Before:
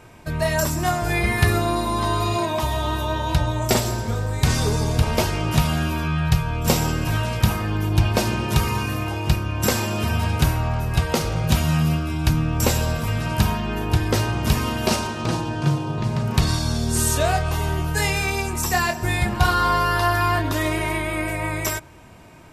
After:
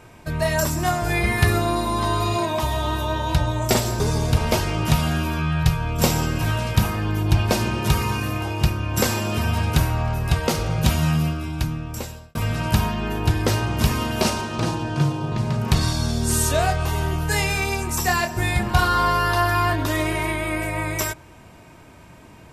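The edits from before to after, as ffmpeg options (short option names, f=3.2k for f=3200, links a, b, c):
-filter_complex "[0:a]asplit=3[a][b][c];[a]atrim=end=4.002[d];[b]atrim=start=4.658:end=13.01,asetpts=PTS-STARTPTS,afade=t=out:st=7.062:d=1.29[e];[c]atrim=start=13.01,asetpts=PTS-STARTPTS,afade=t=in:d=0.004:c=hsin[f];[e][f]concat=n=2:v=0:a=1[g];[d][g]acrossfade=d=0.004:c1=hsin:c2=hsin"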